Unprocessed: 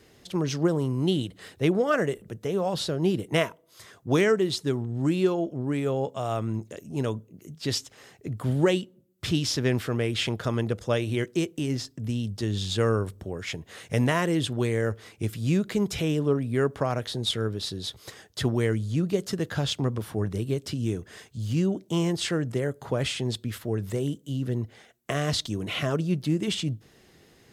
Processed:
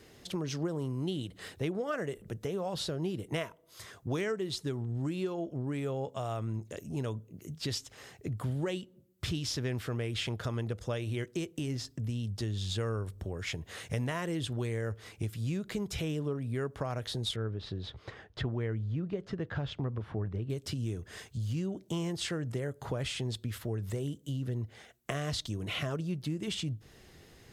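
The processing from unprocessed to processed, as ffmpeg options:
ffmpeg -i in.wav -filter_complex "[0:a]asettb=1/sr,asplit=3[link_01][link_02][link_03];[link_01]atrim=end=17.364[link_04];[link_02]atrim=start=17.36:end=20.5,asetpts=PTS-STARTPTS,afade=type=in:duration=0.004:curve=qsin,afade=type=out:start_time=3.136:duration=0.004:curve=qsin,lowpass=2300[link_05];[link_03]atrim=start=20.496[link_06];[link_04][link_05]acrossfade=duration=0.004:curve1=hsin:curve2=qsin[link_07];[link_07][link_06]acrossfade=duration=0.004:curve1=qsin:curve2=hsin,asubboost=boost=2:cutoff=120,acompressor=threshold=-34dB:ratio=3" out.wav

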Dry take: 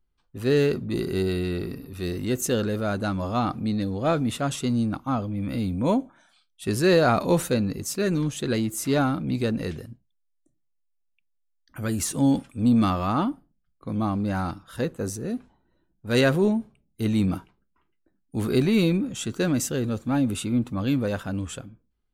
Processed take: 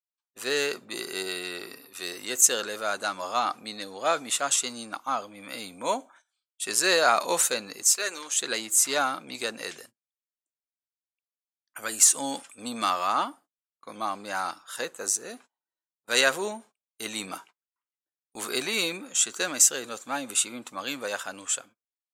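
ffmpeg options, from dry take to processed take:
ffmpeg -i in.wav -filter_complex "[0:a]asettb=1/sr,asplit=3[link_01][link_02][link_03];[link_01]atrim=end=7.894[link_04];[link_02]atrim=start=7.89:end=8.4,asetpts=PTS-STARTPTS,afade=type=in:duration=0.004:curve=qsin,afade=type=out:start_time=0.506:duration=0.004:curve=qsin,highpass=460[link_05];[link_03]atrim=start=8.396[link_06];[link_04][link_05]acrossfade=duration=0.004:curve1=hsin:curve2=qsin[link_07];[link_07][link_06]acrossfade=duration=0.004:curve1=qsin:curve2=hsin,highpass=810,agate=range=-25dB:threshold=-55dB:ratio=16:detection=peak,equalizer=frequency=7400:width_type=o:width=0.84:gain=10.5,volume=3.5dB" out.wav

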